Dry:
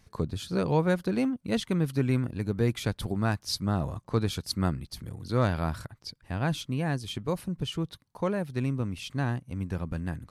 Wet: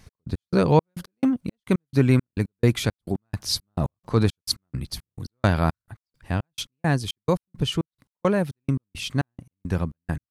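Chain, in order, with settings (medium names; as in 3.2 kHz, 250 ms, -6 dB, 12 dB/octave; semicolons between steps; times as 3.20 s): trance gate "x..x..xx" 171 bpm -60 dB; 2.78–4.23 s: transient shaper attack -3 dB, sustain +4 dB; trim +8 dB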